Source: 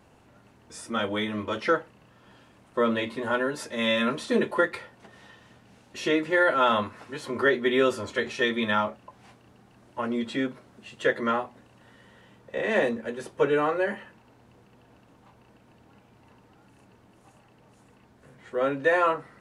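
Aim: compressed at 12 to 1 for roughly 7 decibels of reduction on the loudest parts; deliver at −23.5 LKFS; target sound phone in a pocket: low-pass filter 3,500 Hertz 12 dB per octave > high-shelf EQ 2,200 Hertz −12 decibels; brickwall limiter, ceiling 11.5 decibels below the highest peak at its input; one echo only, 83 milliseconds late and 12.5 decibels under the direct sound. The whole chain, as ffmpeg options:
ffmpeg -i in.wav -af "acompressor=threshold=-24dB:ratio=12,alimiter=level_in=2.5dB:limit=-24dB:level=0:latency=1,volume=-2.5dB,lowpass=3500,highshelf=frequency=2200:gain=-12,aecho=1:1:83:0.237,volume=14dB" out.wav

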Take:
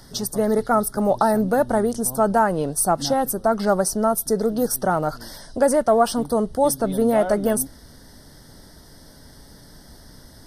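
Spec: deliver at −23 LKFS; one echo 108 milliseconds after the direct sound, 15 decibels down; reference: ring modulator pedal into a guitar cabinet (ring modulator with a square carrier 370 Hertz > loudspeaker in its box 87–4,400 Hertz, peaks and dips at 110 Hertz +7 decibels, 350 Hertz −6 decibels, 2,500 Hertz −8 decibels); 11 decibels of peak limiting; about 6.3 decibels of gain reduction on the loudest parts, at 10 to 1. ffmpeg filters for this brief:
ffmpeg -i in.wav -af "acompressor=threshold=-18dB:ratio=10,alimiter=limit=-19dB:level=0:latency=1,aecho=1:1:108:0.178,aeval=exprs='val(0)*sgn(sin(2*PI*370*n/s))':channel_layout=same,highpass=87,equalizer=frequency=110:width_type=q:width=4:gain=7,equalizer=frequency=350:width_type=q:width=4:gain=-6,equalizer=frequency=2500:width_type=q:width=4:gain=-8,lowpass=frequency=4400:width=0.5412,lowpass=frequency=4400:width=1.3066,volume=6dB" out.wav

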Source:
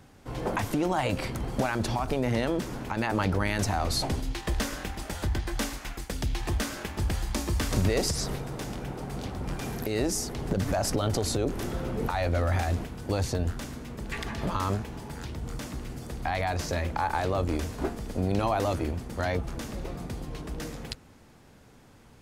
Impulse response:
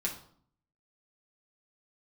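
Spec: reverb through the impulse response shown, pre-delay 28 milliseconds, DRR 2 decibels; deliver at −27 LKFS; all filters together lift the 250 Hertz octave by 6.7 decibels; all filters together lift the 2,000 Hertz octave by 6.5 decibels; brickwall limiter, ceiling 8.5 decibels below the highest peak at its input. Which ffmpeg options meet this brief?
-filter_complex "[0:a]equalizer=frequency=250:width_type=o:gain=8.5,equalizer=frequency=2000:width_type=o:gain=8,alimiter=limit=-18.5dB:level=0:latency=1,asplit=2[link_01][link_02];[1:a]atrim=start_sample=2205,adelay=28[link_03];[link_02][link_03]afir=irnorm=-1:irlink=0,volume=-5.5dB[link_04];[link_01][link_04]amix=inputs=2:normalize=0,volume=0.5dB"

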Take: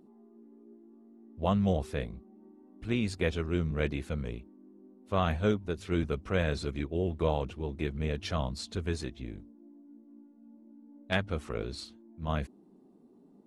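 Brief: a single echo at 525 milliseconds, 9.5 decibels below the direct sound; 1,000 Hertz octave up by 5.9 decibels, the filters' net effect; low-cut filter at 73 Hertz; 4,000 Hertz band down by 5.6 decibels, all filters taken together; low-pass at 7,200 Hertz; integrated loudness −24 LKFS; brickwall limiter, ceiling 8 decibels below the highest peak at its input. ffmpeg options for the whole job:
ffmpeg -i in.wav -af "highpass=73,lowpass=7200,equalizer=frequency=1000:width_type=o:gain=8,equalizer=frequency=4000:width_type=o:gain=-7.5,alimiter=limit=-17.5dB:level=0:latency=1,aecho=1:1:525:0.335,volume=10dB" out.wav

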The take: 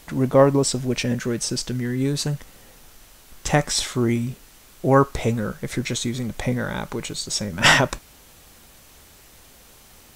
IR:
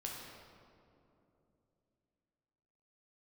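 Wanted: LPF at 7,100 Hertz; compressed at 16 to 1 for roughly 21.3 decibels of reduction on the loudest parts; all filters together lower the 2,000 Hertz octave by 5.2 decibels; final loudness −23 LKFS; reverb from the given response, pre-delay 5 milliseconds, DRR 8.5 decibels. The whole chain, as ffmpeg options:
-filter_complex "[0:a]lowpass=7100,equalizer=frequency=2000:width_type=o:gain=-6.5,acompressor=threshold=-32dB:ratio=16,asplit=2[link_01][link_02];[1:a]atrim=start_sample=2205,adelay=5[link_03];[link_02][link_03]afir=irnorm=-1:irlink=0,volume=-8dB[link_04];[link_01][link_04]amix=inputs=2:normalize=0,volume=13.5dB"

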